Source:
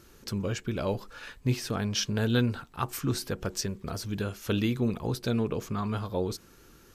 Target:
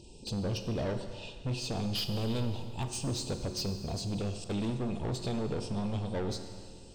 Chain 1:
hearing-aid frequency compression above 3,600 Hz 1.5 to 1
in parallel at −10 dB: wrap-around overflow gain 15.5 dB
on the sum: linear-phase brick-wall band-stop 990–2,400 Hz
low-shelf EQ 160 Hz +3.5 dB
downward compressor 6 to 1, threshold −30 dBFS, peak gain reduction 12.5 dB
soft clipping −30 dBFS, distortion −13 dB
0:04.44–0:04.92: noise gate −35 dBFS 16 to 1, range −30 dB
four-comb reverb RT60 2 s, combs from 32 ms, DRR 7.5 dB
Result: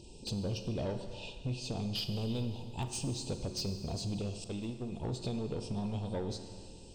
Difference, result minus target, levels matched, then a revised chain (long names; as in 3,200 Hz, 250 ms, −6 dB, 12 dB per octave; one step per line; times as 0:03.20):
downward compressor: peak gain reduction +7.5 dB
hearing-aid frequency compression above 3,600 Hz 1.5 to 1
in parallel at −10 dB: wrap-around overflow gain 15.5 dB
on the sum: linear-phase brick-wall band-stop 990–2,400 Hz
low-shelf EQ 160 Hz +3.5 dB
downward compressor 6 to 1, threshold −21 dBFS, peak gain reduction 5 dB
soft clipping −30 dBFS, distortion −8 dB
0:04.44–0:04.92: noise gate −35 dBFS 16 to 1, range −30 dB
four-comb reverb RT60 2 s, combs from 32 ms, DRR 7.5 dB